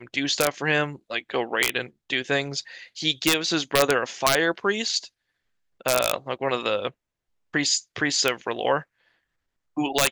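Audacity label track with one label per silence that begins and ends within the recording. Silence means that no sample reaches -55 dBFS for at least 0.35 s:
5.090000	5.800000	silence
6.920000	7.530000	silence
9.110000	9.770000	silence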